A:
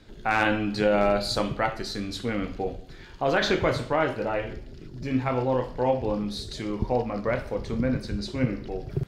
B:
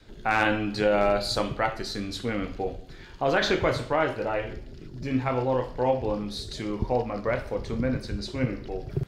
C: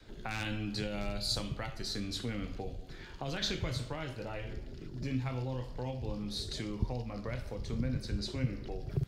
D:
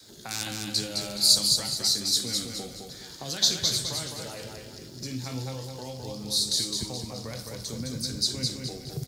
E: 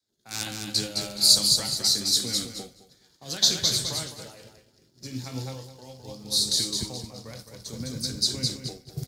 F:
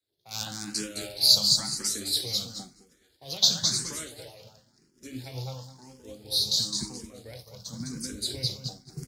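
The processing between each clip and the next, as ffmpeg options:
ffmpeg -i in.wav -af "adynamicequalizer=threshold=0.01:dfrequency=200:dqfactor=1.6:tfrequency=200:tqfactor=1.6:attack=5:release=100:ratio=0.375:range=2.5:mode=cutabove:tftype=bell" out.wav
ffmpeg -i in.wav -filter_complex "[0:a]acrossover=split=200|3000[link_01][link_02][link_03];[link_02]acompressor=threshold=-38dB:ratio=10[link_04];[link_01][link_04][link_03]amix=inputs=3:normalize=0,volume=-2.5dB" out.wav
ffmpeg -i in.wav -af "highpass=110,aexciter=amount=6.5:drive=6.9:freq=3900,aecho=1:1:211|422|633|844|1055:0.631|0.24|0.0911|0.0346|0.0132" out.wav
ffmpeg -i in.wav -af "agate=range=-33dB:threshold=-30dB:ratio=3:detection=peak,volume=2dB" out.wav
ffmpeg -i in.wav -filter_complex "[0:a]asplit=2[link_01][link_02];[link_02]afreqshift=0.97[link_03];[link_01][link_03]amix=inputs=2:normalize=1" out.wav

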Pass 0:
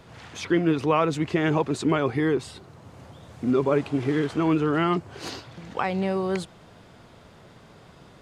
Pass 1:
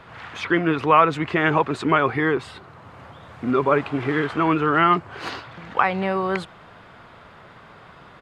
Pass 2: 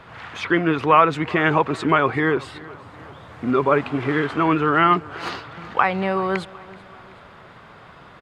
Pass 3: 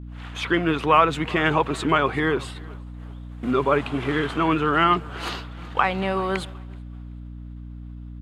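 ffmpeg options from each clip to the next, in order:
ffmpeg -i in.wav -af "firequalizer=gain_entry='entry(300,0);entry(1200,11);entry(5900,-6)':delay=0.05:min_phase=1" out.wav
ffmpeg -i in.wav -af "aecho=1:1:379|758|1137:0.0891|0.0428|0.0205,volume=1dB" out.wav
ffmpeg -i in.wav -af "agate=range=-33dB:threshold=-32dB:ratio=3:detection=peak,aexciter=amount=1.2:drive=8.3:freq=2800,aeval=exprs='val(0)+0.0224*(sin(2*PI*60*n/s)+sin(2*PI*2*60*n/s)/2+sin(2*PI*3*60*n/s)/3+sin(2*PI*4*60*n/s)/4+sin(2*PI*5*60*n/s)/5)':channel_layout=same,volume=-2.5dB" out.wav

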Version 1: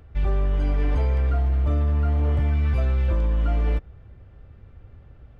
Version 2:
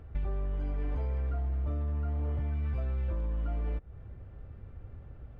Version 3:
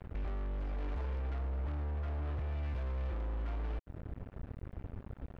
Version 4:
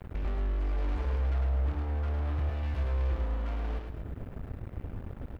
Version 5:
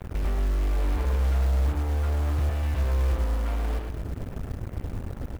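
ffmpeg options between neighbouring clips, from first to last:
ffmpeg -i in.wav -af "highshelf=frequency=2800:gain=-11,acompressor=threshold=-30dB:ratio=6" out.wav
ffmpeg -i in.wav -af "alimiter=level_in=8.5dB:limit=-24dB:level=0:latency=1:release=23,volume=-8.5dB,acrusher=bits=6:mix=0:aa=0.5,volume=1.5dB" out.wav
ffmpeg -i in.wav -filter_complex "[0:a]asplit=2[link_01][link_02];[link_02]aecho=0:1:105|242:0.631|0.251[link_03];[link_01][link_03]amix=inputs=2:normalize=0,crystalizer=i=1:c=0,volume=3.5dB" out.wav
ffmpeg -i in.wav -filter_complex "[0:a]asplit=2[link_01][link_02];[link_02]asoftclip=type=tanh:threshold=-36dB,volume=-6.5dB[link_03];[link_01][link_03]amix=inputs=2:normalize=0,acrusher=bits=6:mode=log:mix=0:aa=0.000001,volume=4dB" out.wav

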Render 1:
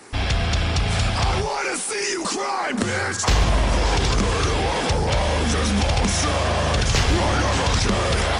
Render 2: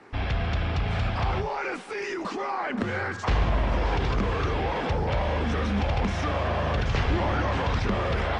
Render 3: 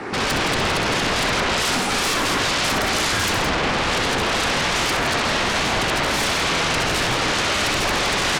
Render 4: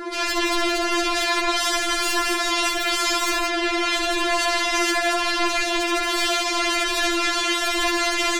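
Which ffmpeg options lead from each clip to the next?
ffmpeg -i in.wav -af "lowpass=2500,volume=-5dB" out.wav
ffmpeg -i in.wav -af "acompressor=threshold=-26dB:ratio=6,aeval=exprs='0.106*sin(PI/2*7.08*val(0)/0.106)':channel_layout=same,aecho=1:1:64.14|166.2:0.501|0.501" out.wav
ffmpeg -i in.wav -filter_complex "[0:a]asplit=2[link_01][link_02];[link_02]asoftclip=type=tanh:threshold=-23.5dB,volume=-11.5dB[link_03];[link_01][link_03]amix=inputs=2:normalize=0,afftfilt=real='re*4*eq(mod(b,16),0)':imag='im*4*eq(mod(b,16),0)':win_size=2048:overlap=0.75" out.wav

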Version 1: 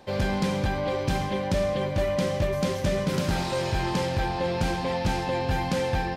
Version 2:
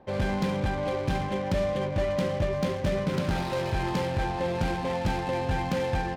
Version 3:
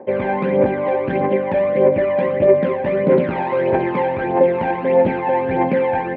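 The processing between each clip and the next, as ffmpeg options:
ffmpeg -i in.wav -af "adynamicsmooth=sensitivity=7.5:basefreq=1200,volume=-1.5dB" out.wav
ffmpeg -i in.wav -af "aphaser=in_gain=1:out_gain=1:delay=1.3:decay=0.57:speed=1.6:type=triangular,highpass=240,equalizer=frequency=250:width_type=q:width=4:gain=6,equalizer=frequency=390:width_type=q:width=4:gain=8,equalizer=frequency=550:width_type=q:width=4:gain=9,equalizer=frequency=910:width_type=q:width=4:gain=3,equalizer=frequency=1300:width_type=q:width=4:gain=-5,equalizer=frequency=2100:width_type=q:width=4:gain=5,lowpass=frequency=2300:width=0.5412,lowpass=frequency=2300:width=1.3066,volume=6dB" out.wav

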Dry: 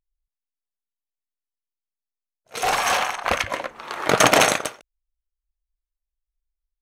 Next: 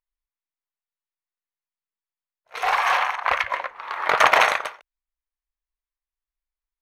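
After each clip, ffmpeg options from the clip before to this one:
ffmpeg -i in.wav -af "equalizer=frequency=125:width_type=o:width=1:gain=-5,equalizer=frequency=250:width_type=o:width=1:gain=-10,equalizer=frequency=500:width_type=o:width=1:gain=3,equalizer=frequency=1000:width_type=o:width=1:gain=12,equalizer=frequency=2000:width_type=o:width=1:gain=10,equalizer=frequency=4000:width_type=o:width=1:gain=4,equalizer=frequency=8000:width_type=o:width=1:gain=-7,volume=-10dB" out.wav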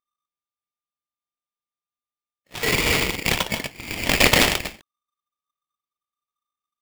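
ffmpeg -i in.wav -af "aeval=exprs='val(0)*sgn(sin(2*PI*1200*n/s))':channel_layout=same" out.wav

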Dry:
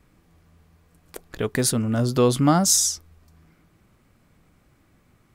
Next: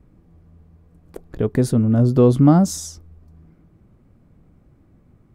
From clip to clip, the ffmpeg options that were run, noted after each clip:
ffmpeg -i in.wav -af "tiltshelf=frequency=970:gain=10,volume=-2dB" out.wav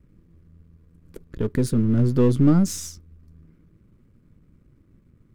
ffmpeg -i in.wav -af "aeval=exprs='if(lt(val(0),0),0.447*val(0),val(0))':channel_layout=same,equalizer=frequency=750:width_type=o:width=0.73:gain=-14.5" out.wav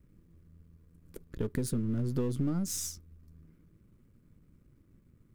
ffmpeg -i in.wav -af "crystalizer=i=1:c=0,acompressor=threshold=-21dB:ratio=10,volume=-6dB" out.wav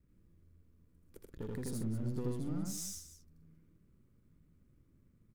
ffmpeg -i in.wav -filter_complex "[0:a]asoftclip=type=tanh:threshold=-23dB,asplit=2[link_01][link_02];[link_02]aecho=0:1:81.63|125.4|268.2:0.891|0.355|0.251[link_03];[link_01][link_03]amix=inputs=2:normalize=0,volume=-8.5dB" out.wav

